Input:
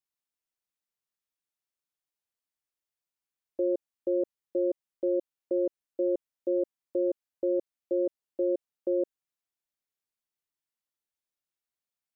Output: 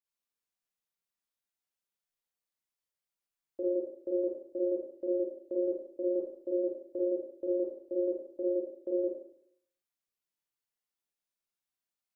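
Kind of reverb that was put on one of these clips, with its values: Schroeder reverb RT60 0.67 s, combs from 32 ms, DRR -5.5 dB; gain -7.5 dB

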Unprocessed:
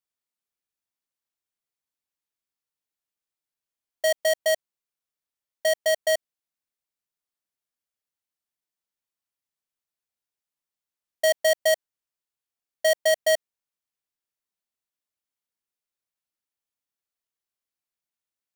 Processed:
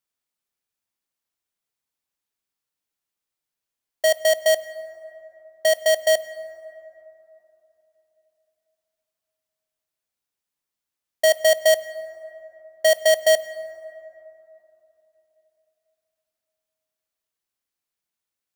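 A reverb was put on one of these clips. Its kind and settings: plate-style reverb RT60 3.4 s, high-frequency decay 0.35×, DRR 14.5 dB; gain +4 dB

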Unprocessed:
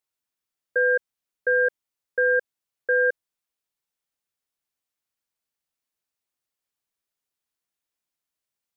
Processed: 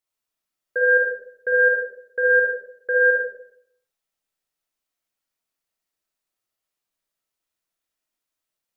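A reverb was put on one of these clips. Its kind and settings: digital reverb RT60 0.7 s, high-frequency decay 0.5×, pre-delay 15 ms, DRR -3 dB; gain -1.5 dB

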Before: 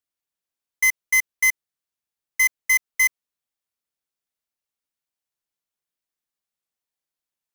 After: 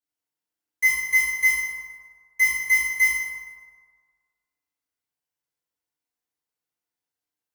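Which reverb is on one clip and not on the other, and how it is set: FDN reverb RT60 1.7 s, low-frequency decay 0.85×, high-frequency decay 0.5×, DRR -10 dB; gain -10 dB

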